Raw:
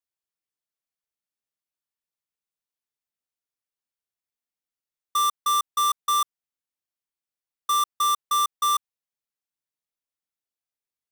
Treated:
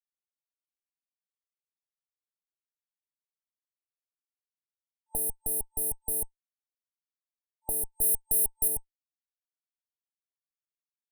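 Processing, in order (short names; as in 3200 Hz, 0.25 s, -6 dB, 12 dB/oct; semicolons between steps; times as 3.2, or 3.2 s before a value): recorder AGC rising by 13 dB/s; fuzz box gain 27 dB, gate -34 dBFS; 8.01–8.68 high shelf 7000 Hz +6.5 dB; FFT band-reject 890–8400 Hz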